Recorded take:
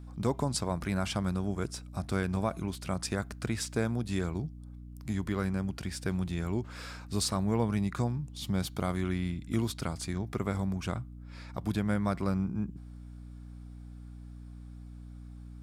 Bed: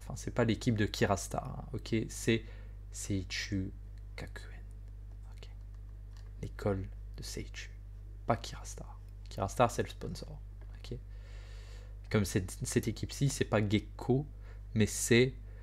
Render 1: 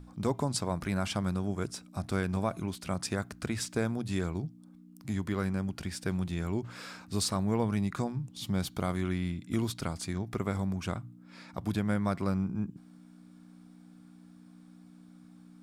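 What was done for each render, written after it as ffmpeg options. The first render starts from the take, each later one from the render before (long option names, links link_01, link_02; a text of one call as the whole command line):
ffmpeg -i in.wav -af "bandreject=frequency=60:width_type=h:width=6,bandreject=frequency=120:width_type=h:width=6" out.wav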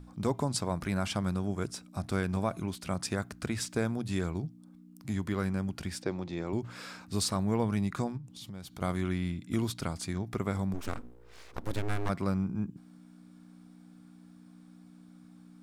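ffmpeg -i in.wav -filter_complex "[0:a]asettb=1/sr,asplit=3[link_01][link_02][link_03];[link_01]atrim=end=6.024[link_04];[link_02]atrim=start=6.02:end=6.53,asetpts=PTS-STARTPTS,afade=type=in:duration=0.004:curve=qsin,afade=type=out:start_time=0.506:duration=0.004:curve=qsin,highpass=150,equalizer=frequency=190:width_type=q:width=4:gain=-5,equalizer=frequency=340:width_type=q:width=4:gain=5,equalizer=frequency=530:width_type=q:width=4:gain=6,equalizer=frequency=850:width_type=q:width=4:gain=4,equalizer=frequency=1500:width_type=q:width=4:gain=-5,equalizer=frequency=3000:width_type=q:width=4:gain=-6,lowpass=frequency=5800:width=0.5412,lowpass=frequency=5800:width=1.3066[link_05];[link_03]atrim=start=6.526[link_06];[link_04][link_05]acrossfade=duration=0.004:curve1=hsin:curve2=qsin[link_07];[link_07][link_06]acrossfade=duration=0.004:curve1=qsin:curve2=hsin,asplit=3[link_08][link_09][link_10];[link_08]afade=type=out:start_time=8.16:duration=0.02[link_11];[link_09]acompressor=threshold=-44dB:ratio=3:attack=3.2:release=140:knee=1:detection=peak,afade=type=in:start_time=8.16:duration=0.02,afade=type=out:start_time=8.8:duration=0.02[link_12];[link_10]afade=type=in:start_time=8.8:duration=0.02[link_13];[link_11][link_12][link_13]amix=inputs=3:normalize=0,asplit=3[link_14][link_15][link_16];[link_14]afade=type=out:start_time=10.73:duration=0.02[link_17];[link_15]aeval=exprs='abs(val(0))':channel_layout=same,afade=type=in:start_time=10.73:duration=0.02,afade=type=out:start_time=12.08:duration=0.02[link_18];[link_16]afade=type=in:start_time=12.08:duration=0.02[link_19];[link_17][link_18][link_19]amix=inputs=3:normalize=0" out.wav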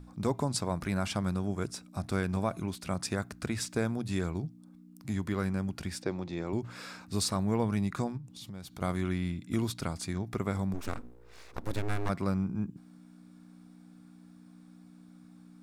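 ffmpeg -i in.wav -af "bandreject=frequency=3100:width=20" out.wav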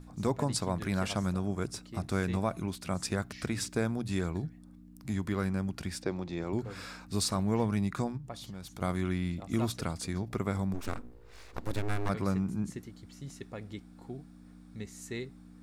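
ffmpeg -i in.wav -i bed.wav -filter_complex "[1:a]volume=-13dB[link_01];[0:a][link_01]amix=inputs=2:normalize=0" out.wav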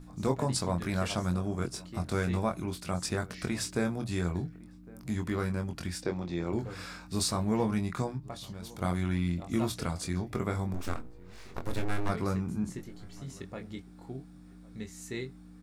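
ffmpeg -i in.wav -filter_complex "[0:a]asplit=2[link_01][link_02];[link_02]adelay=23,volume=-5.5dB[link_03];[link_01][link_03]amix=inputs=2:normalize=0,asplit=2[link_04][link_05];[link_05]adelay=1108,volume=-22dB,highshelf=frequency=4000:gain=-24.9[link_06];[link_04][link_06]amix=inputs=2:normalize=0" out.wav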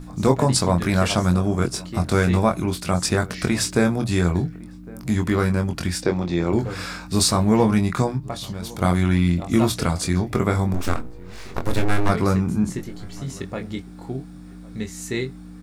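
ffmpeg -i in.wav -af "volume=11.5dB" out.wav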